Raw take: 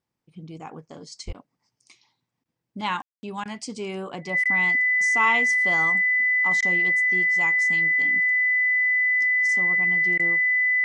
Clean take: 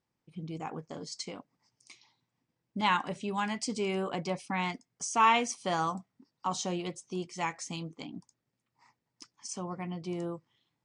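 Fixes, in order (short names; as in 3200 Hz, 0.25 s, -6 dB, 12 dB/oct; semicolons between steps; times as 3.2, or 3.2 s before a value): notch 2000 Hz, Q 30; 1.26–1.38 HPF 140 Hz 24 dB/oct; room tone fill 3.02–3.23; interpolate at 1.33/2.44/3.44/4.44/6.61/10.18, 13 ms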